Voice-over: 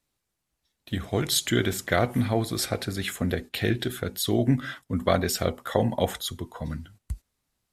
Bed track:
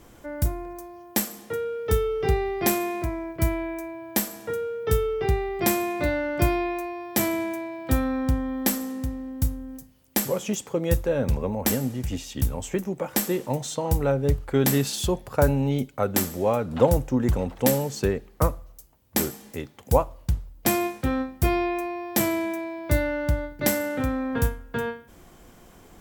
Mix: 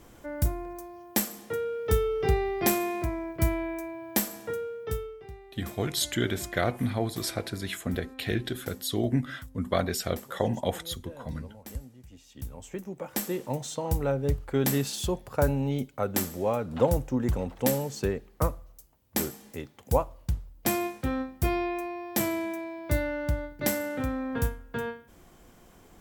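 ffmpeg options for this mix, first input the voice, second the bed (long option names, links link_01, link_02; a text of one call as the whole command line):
ffmpeg -i stem1.wav -i stem2.wav -filter_complex "[0:a]adelay=4650,volume=-4dB[link_01];[1:a]volume=15dB,afade=type=out:start_time=4.36:duration=0.87:silence=0.105925,afade=type=in:start_time=12.14:duration=1.4:silence=0.141254[link_02];[link_01][link_02]amix=inputs=2:normalize=0" out.wav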